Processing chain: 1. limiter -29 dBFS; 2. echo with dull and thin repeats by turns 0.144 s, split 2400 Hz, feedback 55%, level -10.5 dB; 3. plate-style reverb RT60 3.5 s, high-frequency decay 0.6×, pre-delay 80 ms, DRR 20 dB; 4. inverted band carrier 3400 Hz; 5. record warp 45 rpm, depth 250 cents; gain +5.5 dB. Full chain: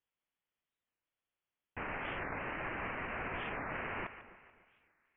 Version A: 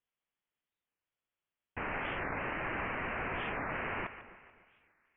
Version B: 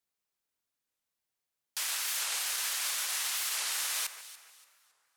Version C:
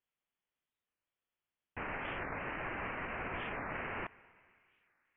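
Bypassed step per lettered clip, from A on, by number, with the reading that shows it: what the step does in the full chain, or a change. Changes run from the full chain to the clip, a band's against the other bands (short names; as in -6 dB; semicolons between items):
1, mean gain reduction 3.0 dB; 4, loudness change +9.0 LU; 2, momentary loudness spread change -4 LU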